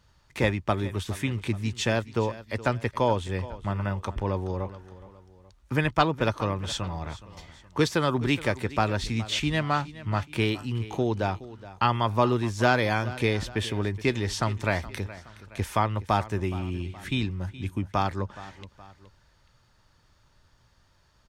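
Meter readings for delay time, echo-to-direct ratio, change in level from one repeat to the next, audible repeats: 0.42 s, -16.0 dB, -6.5 dB, 2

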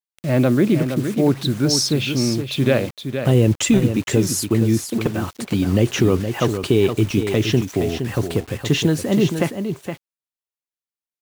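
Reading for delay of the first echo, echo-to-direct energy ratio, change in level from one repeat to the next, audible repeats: 0.467 s, -8.0 dB, no steady repeat, 1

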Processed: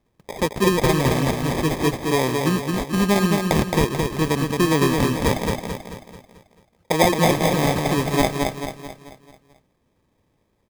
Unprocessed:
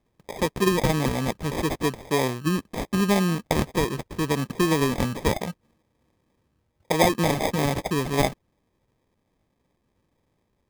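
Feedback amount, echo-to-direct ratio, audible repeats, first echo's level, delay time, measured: 47%, -3.0 dB, 5, -4.0 dB, 0.219 s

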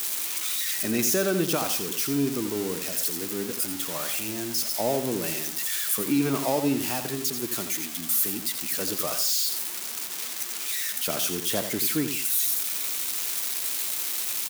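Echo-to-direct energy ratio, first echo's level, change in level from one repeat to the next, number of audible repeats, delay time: -8.0 dB, -8.5 dB, -10.0 dB, 2, 85 ms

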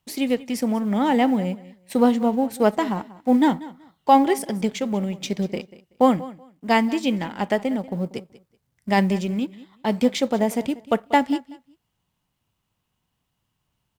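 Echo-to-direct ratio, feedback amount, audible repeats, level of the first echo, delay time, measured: -18.5 dB, 19%, 2, -18.5 dB, 0.189 s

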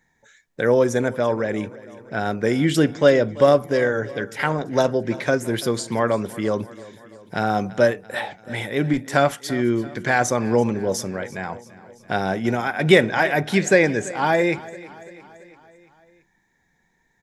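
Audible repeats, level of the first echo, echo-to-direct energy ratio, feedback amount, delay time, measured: 4, -19.0 dB, -17.0 dB, 59%, 0.337 s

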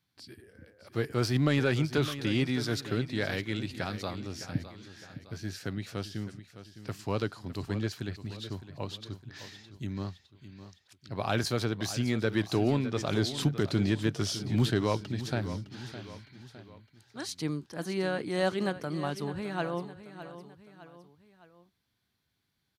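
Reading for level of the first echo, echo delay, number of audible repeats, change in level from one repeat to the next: -13.0 dB, 0.61 s, 3, -6.5 dB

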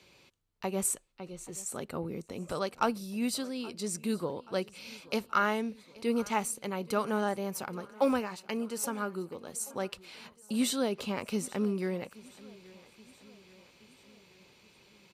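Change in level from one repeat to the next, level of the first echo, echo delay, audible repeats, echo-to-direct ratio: -5.0 dB, -21.5 dB, 0.827 s, 3, -20.0 dB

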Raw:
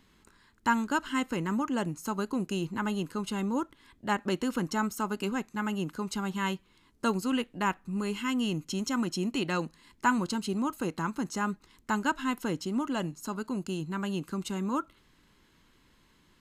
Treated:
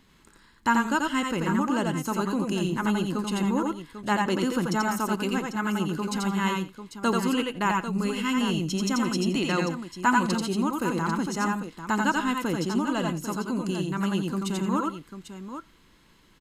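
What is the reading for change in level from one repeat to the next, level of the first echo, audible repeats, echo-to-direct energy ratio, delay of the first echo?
no steady repeat, -3.5 dB, 3, -1.5 dB, 86 ms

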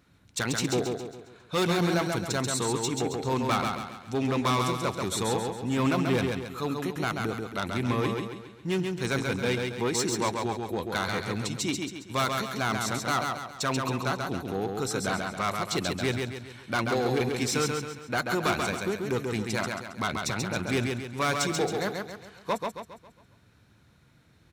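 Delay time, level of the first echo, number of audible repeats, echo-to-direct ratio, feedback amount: 0.136 s, -4.0 dB, 5, -3.0 dB, 44%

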